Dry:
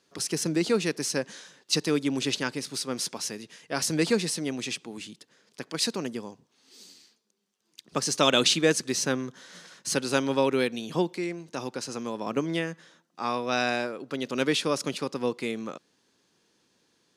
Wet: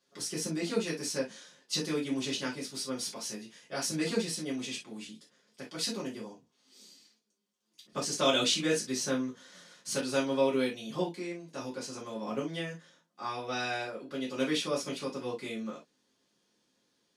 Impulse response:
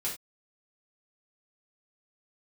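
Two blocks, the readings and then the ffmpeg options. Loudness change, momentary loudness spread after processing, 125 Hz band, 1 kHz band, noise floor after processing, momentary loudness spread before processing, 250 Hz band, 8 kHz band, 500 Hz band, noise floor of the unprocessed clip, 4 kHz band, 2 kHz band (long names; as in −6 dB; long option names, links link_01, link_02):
−5.5 dB, 14 LU, −6.5 dB, −6.0 dB, −75 dBFS, 15 LU, −5.0 dB, −5.5 dB, −5.0 dB, −71 dBFS, −5.0 dB, −6.5 dB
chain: -filter_complex "[1:a]atrim=start_sample=2205,asetrate=61740,aresample=44100[link_01];[0:a][link_01]afir=irnorm=-1:irlink=0,volume=-6dB"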